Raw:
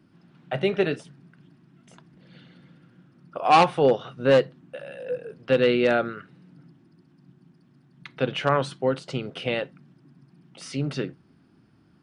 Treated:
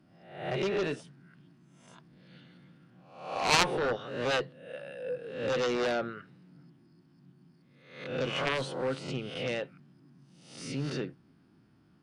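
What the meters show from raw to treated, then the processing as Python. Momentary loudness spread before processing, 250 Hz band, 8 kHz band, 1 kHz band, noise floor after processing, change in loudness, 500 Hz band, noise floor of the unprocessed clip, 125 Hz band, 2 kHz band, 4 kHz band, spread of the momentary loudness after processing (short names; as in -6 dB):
17 LU, -8.5 dB, n/a, -10.0 dB, -63 dBFS, -8.0 dB, -9.0 dB, -60 dBFS, -7.5 dB, -3.5 dB, -1.5 dB, 17 LU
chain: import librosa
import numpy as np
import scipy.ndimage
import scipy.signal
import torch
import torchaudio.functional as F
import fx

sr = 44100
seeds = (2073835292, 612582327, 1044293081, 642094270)

y = fx.spec_swells(x, sr, rise_s=0.63)
y = fx.cheby_harmonics(y, sr, harmonics=(3, 7), levels_db=(-7, -27), full_scale_db=-3.0)
y = y * 10.0 ** (-2.5 / 20.0)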